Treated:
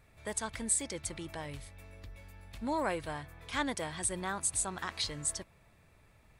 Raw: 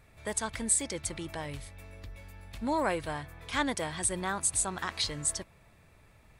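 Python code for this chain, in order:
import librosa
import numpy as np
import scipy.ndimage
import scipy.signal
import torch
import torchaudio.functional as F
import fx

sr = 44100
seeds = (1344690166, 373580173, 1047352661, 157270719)

y = x * librosa.db_to_amplitude(-3.5)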